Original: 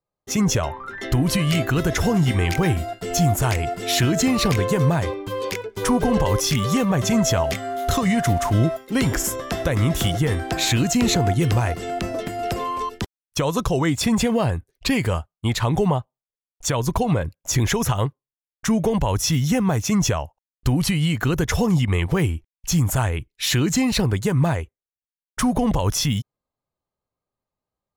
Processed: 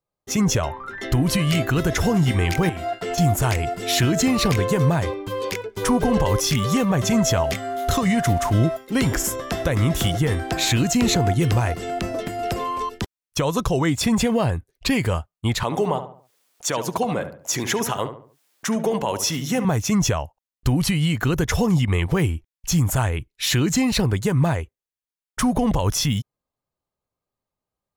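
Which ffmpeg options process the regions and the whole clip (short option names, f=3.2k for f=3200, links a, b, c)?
-filter_complex "[0:a]asettb=1/sr,asplit=3[a][b][c];[a]atrim=end=2.694[d];[b]atrim=start=2.69:end=3.18,asetpts=PTS-STARTPTS,afade=t=in:d=0.004:c=qsin,afade=t=out:st=0.486:d=0.004:c=qsin,acompressor=threshold=-26dB:ratio=10:attack=3.2:release=140:knee=1:detection=peak,asplit=2[e][f];[f]highpass=f=720:p=1,volume=15dB,asoftclip=type=tanh:threshold=-12.5dB[g];[e][g]amix=inputs=2:normalize=0,lowpass=f=2.2k:p=1,volume=-6dB[h];[c]atrim=start=3.176[i];[d][h]acrossfade=d=0.004:c1=hsin:c2=qsin[j];[j][i]acrossfade=d=0.004:c1=qsin:c2=hsin,asettb=1/sr,asplit=3[k][l][m];[k]atrim=end=15.634[n];[l]atrim=start=15.63:end=19.65,asetpts=PTS-STARTPTS,afade=t=in:d=0.004:c=qsin,afade=t=out:st=4.016:d=0.004:c=qsin,highpass=250,acompressor=mode=upward:threshold=-41dB:ratio=2.5:attack=3.2:release=140:knee=2.83:detection=peak,asplit=2[o][p];[p]adelay=71,lowpass=f=1.8k:p=1,volume=-9dB,asplit=2[q][r];[r]adelay=71,lowpass=f=1.8k:p=1,volume=0.4,asplit=2[s][t];[t]adelay=71,lowpass=f=1.8k:p=1,volume=0.4,asplit=2[u][v];[v]adelay=71,lowpass=f=1.8k:p=1,volume=0.4[w];[o][q][s][u][w]amix=inputs=5:normalize=0,atrim=end_sample=177282[x];[m]atrim=start=19.646[y];[n][x]acrossfade=d=0.004:c1=hsin:c2=qsin[z];[z][y]acrossfade=d=0.004:c1=qsin:c2=hsin"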